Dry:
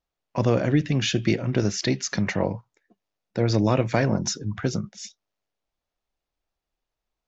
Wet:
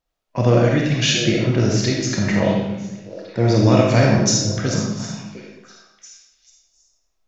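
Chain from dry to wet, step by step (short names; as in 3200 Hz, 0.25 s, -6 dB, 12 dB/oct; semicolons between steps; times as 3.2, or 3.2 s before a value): 3.56–4.95 high shelf 4000 Hz +10.5 dB; harmonic-percussive split harmonic +5 dB; 0.63–1.24 tilt shelf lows -6 dB, about 1100 Hz; delay with a stepping band-pass 0.352 s, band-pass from 160 Hz, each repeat 1.4 oct, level -9 dB; reverb RT60 0.90 s, pre-delay 5 ms, DRR -1.5 dB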